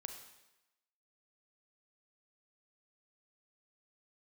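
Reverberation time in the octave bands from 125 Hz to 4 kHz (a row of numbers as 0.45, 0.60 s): 0.80, 0.90, 0.95, 1.0, 1.0, 0.95 s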